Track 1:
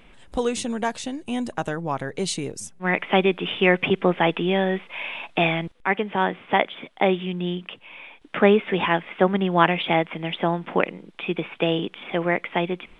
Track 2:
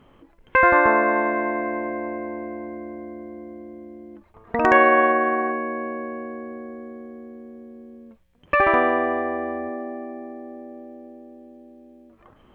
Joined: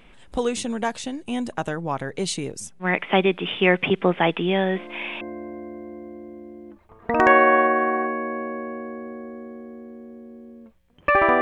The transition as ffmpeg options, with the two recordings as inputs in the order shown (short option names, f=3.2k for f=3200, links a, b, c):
-filter_complex "[1:a]asplit=2[a][b];[0:a]apad=whole_dur=11.41,atrim=end=11.41,atrim=end=5.212[c];[b]atrim=start=2.658:end=8.86[d];[a]atrim=start=2.2:end=2.66,asetpts=PTS-STARTPTS,volume=-8.5dB,afade=t=in:d=0.004:c=hsin,afade=t=out:st=0.456:d=0.004:c=hsin,adelay=4750[e];[c][d]acrossfade=d=0.004:c1=hsin:c2=hsin[f];[f][e]amix=inputs=2:normalize=0"